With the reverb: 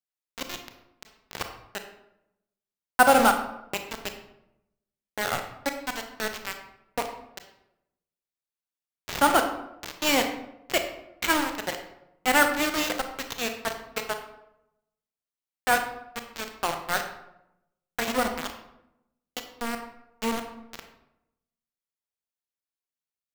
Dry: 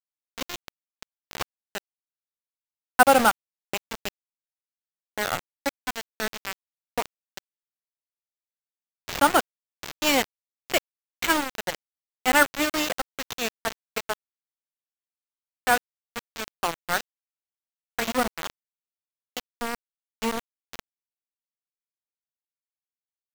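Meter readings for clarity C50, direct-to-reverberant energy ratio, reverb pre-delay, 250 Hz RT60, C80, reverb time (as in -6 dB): 8.0 dB, 5.5 dB, 25 ms, 0.95 s, 10.0 dB, 0.85 s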